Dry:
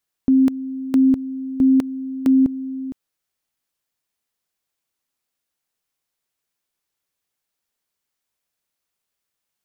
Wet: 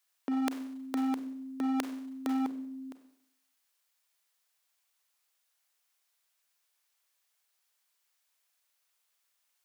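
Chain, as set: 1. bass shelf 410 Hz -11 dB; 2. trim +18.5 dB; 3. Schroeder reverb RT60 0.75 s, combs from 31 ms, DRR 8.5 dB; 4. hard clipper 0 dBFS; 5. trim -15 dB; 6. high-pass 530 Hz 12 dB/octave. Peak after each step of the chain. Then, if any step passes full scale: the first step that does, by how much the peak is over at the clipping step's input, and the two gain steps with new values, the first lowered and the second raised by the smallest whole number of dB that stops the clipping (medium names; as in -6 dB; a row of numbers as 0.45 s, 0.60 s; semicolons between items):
-12.0 dBFS, +6.5 dBFS, +7.0 dBFS, 0.0 dBFS, -15.0 dBFS, -9.5 dBFS; step 2, 7.0 dB; step 2 +11.5 dB, step 5 -8 dB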